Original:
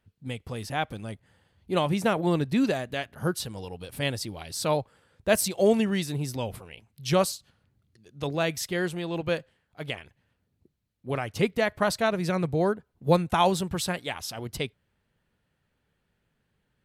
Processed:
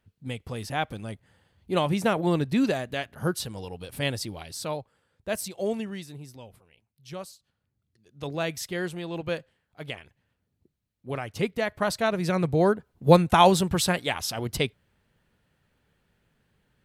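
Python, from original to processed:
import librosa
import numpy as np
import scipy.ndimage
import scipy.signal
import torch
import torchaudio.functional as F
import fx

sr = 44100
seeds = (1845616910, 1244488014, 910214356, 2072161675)

y = fx.gain(x, sr, db=fx.line((4.37, 0.5), (4.77, -7.5), (5.74, -7.5), (6.57, -15.5), (7.26, -15.5), (8.35, -2.5), (11.66, -2.5), (12.91, 5.0)))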